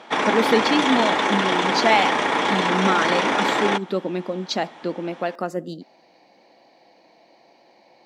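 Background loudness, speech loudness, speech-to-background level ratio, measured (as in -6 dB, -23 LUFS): -20.5 LUFS, -24.5 LUFS, -4.0 dB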